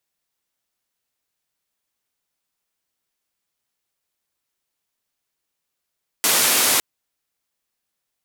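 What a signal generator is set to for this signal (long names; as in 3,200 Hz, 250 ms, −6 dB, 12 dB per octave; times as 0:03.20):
band-limited noise 200–14,000 Hz, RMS −17.5 dBFS 0.56 s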